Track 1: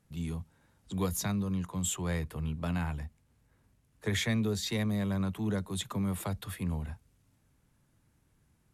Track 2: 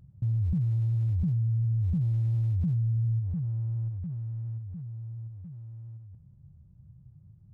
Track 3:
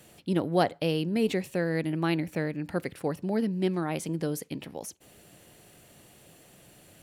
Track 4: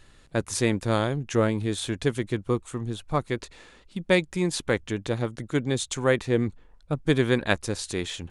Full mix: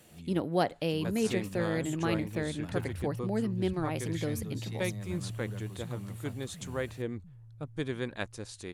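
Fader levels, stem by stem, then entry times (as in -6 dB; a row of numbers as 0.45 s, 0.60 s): -12.5 dB, -13.5 dB, -3.5 dB, -12.5 dB; 0.00 s, 2.50 s, 0.00 s, 0.70 s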